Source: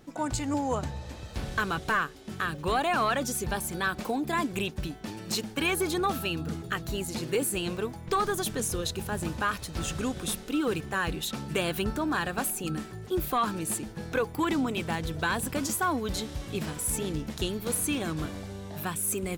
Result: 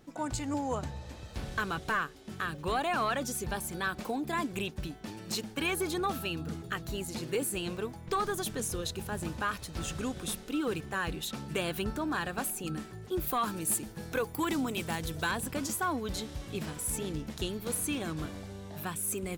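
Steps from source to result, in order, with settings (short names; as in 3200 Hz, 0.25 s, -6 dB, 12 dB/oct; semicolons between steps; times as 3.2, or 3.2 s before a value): 13.26–15.3 high shelf 11000 Hz -> 5600 Hz +12 dB; gain -4 dB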